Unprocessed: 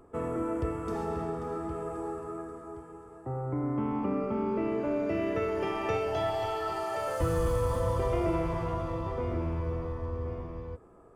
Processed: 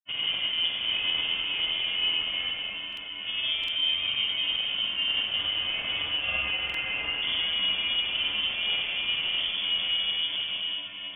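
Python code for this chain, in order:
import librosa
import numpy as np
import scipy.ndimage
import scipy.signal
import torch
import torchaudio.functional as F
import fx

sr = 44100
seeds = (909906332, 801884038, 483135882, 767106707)

y = scipy.signal.medfilt(x, 25)
y = fx.highpass(y, sr, hz=250.0, slope=6)
y = fx.rider(y, sr, range_db=5, speed_s=0.5)
y = fx.dmg_buzz(y, sr, base_hz=400.0, harmonics=17, level_db=-51.0, tilt_db=-6, odd_only=False)
y = fx.granulator(y, sr, seeds[0], grain_ms=100.0, per_s=20.0, spray_ms=100.0, spread_st=0)
y = fx.echo_diffused(y, sr, ms=1199, feedback_pct=41, wet_db=-13)
y = fx.rev_schroeder(y, sr, rt60_s=0.64, comb_ms=30, drr_db=-3.0)
y = (np.kron(y[::8], np.eye(8)[0]) * 8)[:len(y)]
y = fx.freq_invert(y, sr, carrier_hz=3400)
y = fx.buffer_glitch(y, sr, at_s=(2.88, 3.59, 6.65), block=2048, repeats=1)
y = y * 10.0 ** (2.0 / 20.0)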